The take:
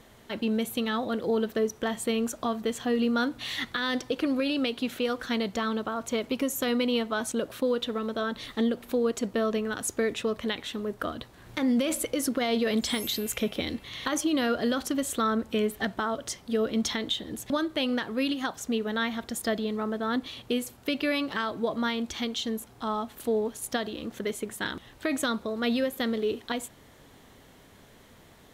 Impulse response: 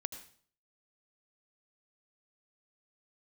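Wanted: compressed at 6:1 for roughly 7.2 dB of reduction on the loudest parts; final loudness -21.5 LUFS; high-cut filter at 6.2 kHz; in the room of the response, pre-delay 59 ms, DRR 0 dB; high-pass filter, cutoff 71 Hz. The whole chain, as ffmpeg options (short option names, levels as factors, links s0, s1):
-filter_complex "[0:a]highpass=71,lowpass=6200,acompressor=threshold=0.0316:ratio=6,asplit=2[s0][s1];[1:a]atrim=start_sample=2205,adelay=59[s2];[s1][s2]afir=irnorm=-1:irlink=0,volume=1.12[s3];[s0][s3]amix=inputs=2:normalize=0,volume=3.16"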